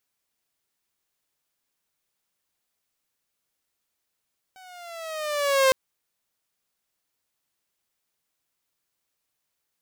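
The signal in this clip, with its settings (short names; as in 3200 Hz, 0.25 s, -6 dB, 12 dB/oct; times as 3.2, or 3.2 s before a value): gliding synth tone saw, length 1.16 s, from 759 Hz, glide -6.5 st, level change +32 dB, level -12 dB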